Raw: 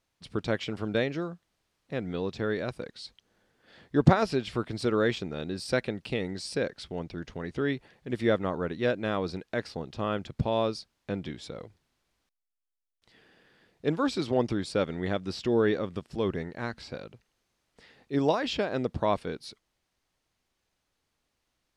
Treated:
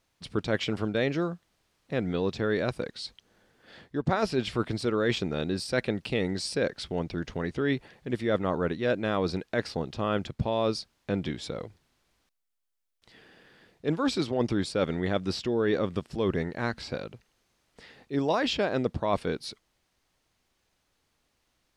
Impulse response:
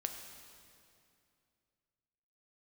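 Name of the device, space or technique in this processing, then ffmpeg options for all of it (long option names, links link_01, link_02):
compression on the reversed sound: -af "areverse,acompressor=threshold=-27dB:ratio=16,areverse,volume=5dB"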